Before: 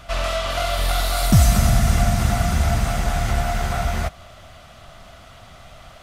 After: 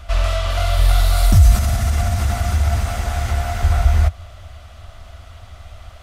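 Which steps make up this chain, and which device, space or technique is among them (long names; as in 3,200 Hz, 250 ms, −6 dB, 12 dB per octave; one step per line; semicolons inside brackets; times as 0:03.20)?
car stereo with a boomy subwoofer (low shelf with overshoot 110 Hz +8 dB, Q 3; brickwall limiter −2 dBFS, peak gain reduction 8.5 dB)
0:01.55–0:03.63: high-pass filter 140 Hz 6 dB per octave
level −1 dB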